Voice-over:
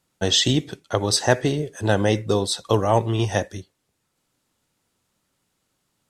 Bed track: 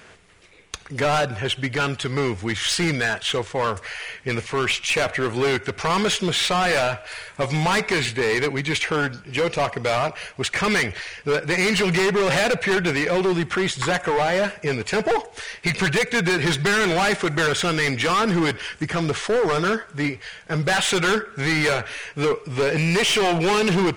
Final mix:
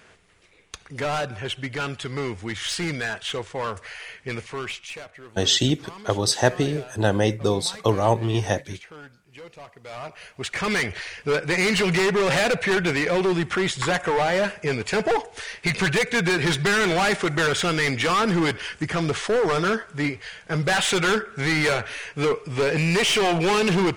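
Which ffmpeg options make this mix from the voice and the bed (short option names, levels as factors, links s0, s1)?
-filter_complex "[0:a]adelay=5150,volume=0.891[s0];[1:a]volume=5.31,afade=t=out:st=4.31:d=0.77:silence=0.16788,afade=t=in:st=9.82:d=1.21:silence=0.1[s1];[s0][s1]amix=inputs=2:normalize=0"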